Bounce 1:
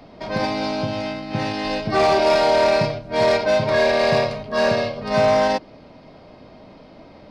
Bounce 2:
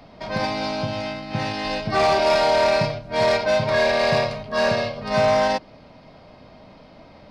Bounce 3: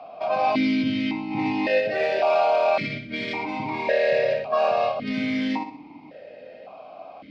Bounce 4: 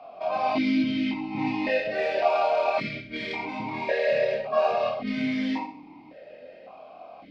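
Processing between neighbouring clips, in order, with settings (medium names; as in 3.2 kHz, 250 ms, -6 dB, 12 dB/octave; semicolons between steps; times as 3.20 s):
peaking EQ 350 Hz -6 dB 1.1 oct
flutter echo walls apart 10.6 m, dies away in 0.46 s; in parallel at -3 dB: compressor with a negative ratio -25 dBFS, ratio -0.5; on the sum: stepped vowel filter 1.8 Hz; trim +7 dB
chorus voices 6, 0.92 Hz, delay 25 ms, depth 3 ms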